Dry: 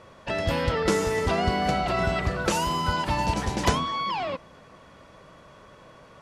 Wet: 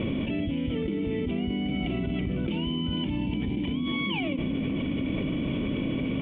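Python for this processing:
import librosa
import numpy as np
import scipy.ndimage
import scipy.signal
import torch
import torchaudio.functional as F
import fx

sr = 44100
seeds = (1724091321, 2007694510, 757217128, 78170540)

y = fx.formant_cascade(x, sr, vowel='i')
y = fx.env_flatten(y, sr, amount_pct=100)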